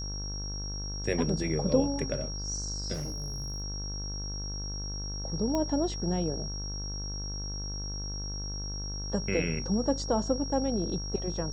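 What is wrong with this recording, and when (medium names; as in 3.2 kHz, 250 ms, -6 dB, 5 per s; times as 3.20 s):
buzz 50 Hz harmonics 34 -37 dBFS
whine 5.6 kHz -38 dBFS
2.93–3.62 s: clipped -31 dBFS
5.55 s: pop -18 dBFS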